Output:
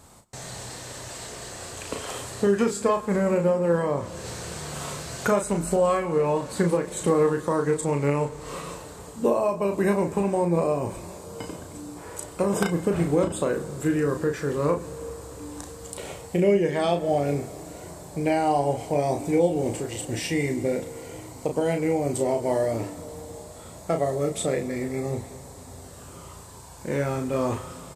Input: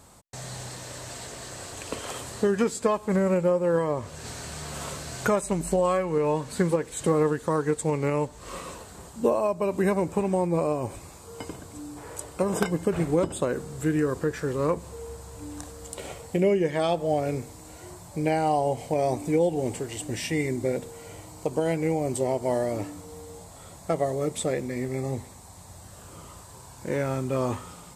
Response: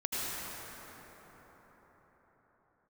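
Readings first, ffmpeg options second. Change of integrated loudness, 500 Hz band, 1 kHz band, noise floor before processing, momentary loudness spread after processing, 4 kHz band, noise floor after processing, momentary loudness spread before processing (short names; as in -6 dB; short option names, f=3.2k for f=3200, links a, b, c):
+1.5 dB, +1.5 dB, +1.5 dB, -47 dBFS, 17 LU, +1.5 dB, -43 dBFS, 19 LU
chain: -filter_complex "[0:a]asplit=2[a][b];[b]adelay=35,volume=-6dB[c];[a][c]amix=inputs=2:normalize=0,asplit=2[d][e];[1:a]atrim=start_sample=2205[f];[e][f]afir=irnorm=-1:irlink=0,volume=-22.5dB[g];[d][g]amix=inputs=2:normalize=0"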